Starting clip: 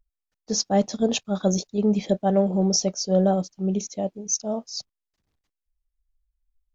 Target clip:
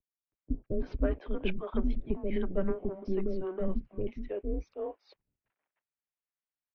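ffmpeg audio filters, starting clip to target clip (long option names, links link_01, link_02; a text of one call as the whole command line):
ffmpeg -i in.wav -filter_complex "[0:a]asplit=2[link_01][link_02];[link_02]aeval=exprs='0.398*sin(PI/2*1.58*val(0)/0.398)':channel_layout=same,volume=-9.5dB[link_03];[link_01][link_03]amix=inputs=2:normalize=0,acompressor=threshold=-18dB:ratio=6,acrossover=split=600[link_04][link_05];[link_05]adelay=320[link_06];[link_04][link_06]amix=inputs=2:normalize=0,highpass=frequency=180:width_type=q:width=0.5412,highpass=frequency=180:width_type=q:width=1.307,lowpass=frequency=2700:width_type=q:width=0.5176,lowpass=frequency=2700:width_type=q:width=0.7071,lowpass=frequency=2700:width_type=q:width=1.932,afreqshift=-180,volume=-5dB" out.wav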